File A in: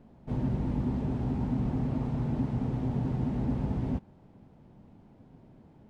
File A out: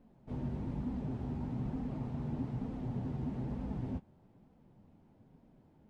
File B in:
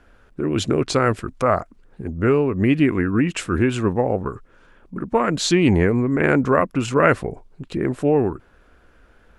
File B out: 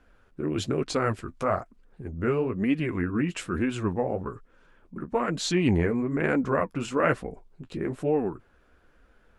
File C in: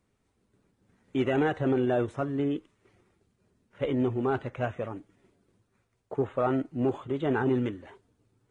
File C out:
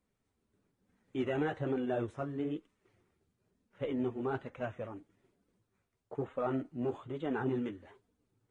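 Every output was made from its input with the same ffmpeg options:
-af "flanger=delay=3.8:depth=9.5:regen=-30:speed=1.1:shape=sinusoidal,volume=-4dB"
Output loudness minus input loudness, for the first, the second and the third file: -8.0, -7.5, -7.5 LU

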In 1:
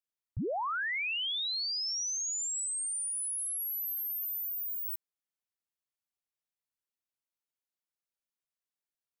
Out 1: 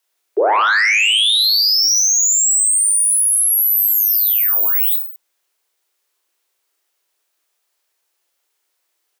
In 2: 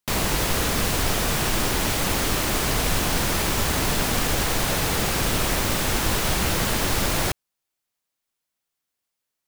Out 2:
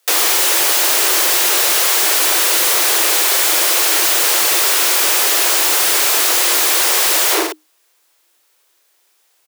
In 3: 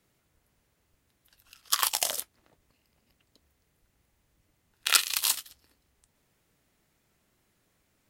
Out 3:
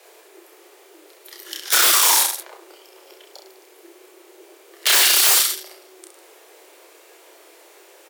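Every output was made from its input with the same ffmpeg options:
-af "asoftclip=type=tanh:threshold=-17dB,aecho=1:1:30|64.5|104.2|149.8|202.3:0.631|0.398|0.251|0.158|0.1,aeval=exprs='0.398*sin(PI/2*10*val(0)/0.398)':c=same,afreqshift=310,volume=-3dB"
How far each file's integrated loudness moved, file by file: +20.0, +11.5, +12.0 LU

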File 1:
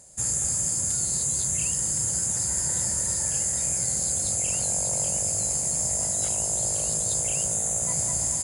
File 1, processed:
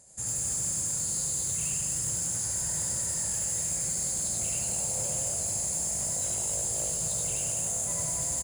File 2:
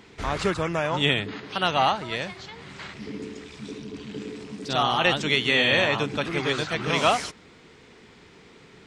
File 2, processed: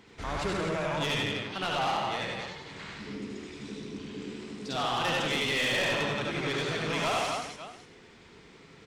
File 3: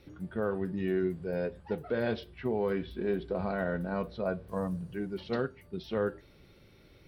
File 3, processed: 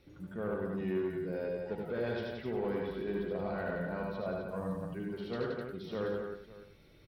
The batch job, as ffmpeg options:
-filter_complex "[0:a]asplit=2[a][b];[b]aecho=0:1:75|94|173|256|552:0.631|0.562|0.447|0.447|0.133[c];[a][c]amix=inputs=2:normalize=0,asoftclip=type=tanh:threshold=-18.5dB,asplit=2[d][e];[e]aecho=0:1:100:0.316[f];[d][f]amix=inputs=2:normalize=0,volume=-6dB"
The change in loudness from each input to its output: -4.5, -7.0, -3.5 LU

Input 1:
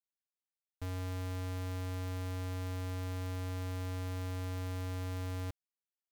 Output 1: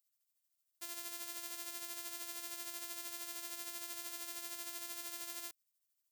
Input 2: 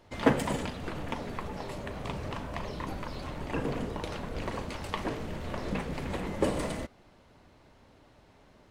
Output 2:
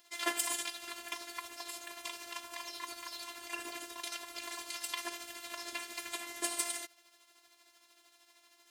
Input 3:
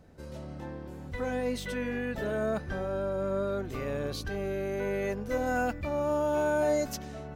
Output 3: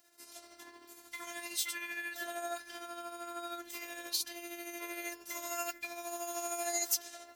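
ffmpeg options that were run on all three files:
-af "afftfilt=real='hypot(re,im)*cos(PI*b)':imag='0':win_size=512:overlap=0.75,aderivative,tremolo=f=13:d=0.48,volume=15.5dB"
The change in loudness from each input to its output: -3.0, -4.5, -6.5 LU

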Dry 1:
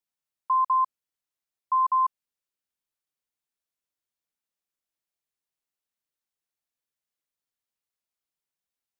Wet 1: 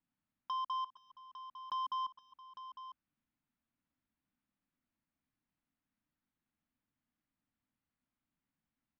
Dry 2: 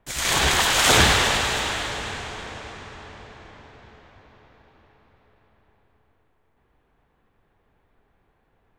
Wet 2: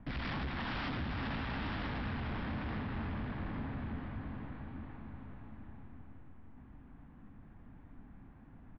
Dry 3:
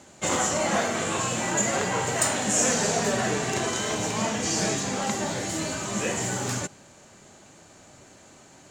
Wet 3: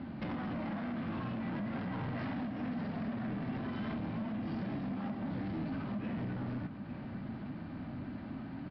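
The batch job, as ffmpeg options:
-af "lowpass=2k,lowshelf=f=330:t=q:w=3:g=8,acompressor=threshold=-34dB:ratio=10,aresample=11025,asoftclip=type=tanh:threshold=-38.5dB,aresample=44100,aecho=1:1:257|470|853:0.119|0.119|0.251,volume=4dB"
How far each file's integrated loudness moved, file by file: -16.5, -20.5, -13.5 LU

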